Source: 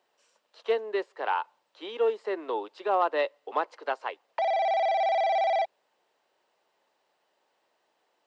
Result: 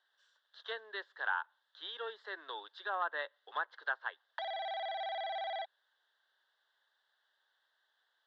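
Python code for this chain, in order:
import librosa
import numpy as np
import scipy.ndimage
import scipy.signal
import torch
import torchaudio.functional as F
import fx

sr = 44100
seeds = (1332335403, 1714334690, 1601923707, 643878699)

y = fx.double_bandpass(x, sr, hz=2400.0, octaves=1.1)
y = fx.env_lowpass_down(y, sr, base_hz=2300.0, full_db=-39.5)
y = y * librosa.db_to_amplitude(6.0)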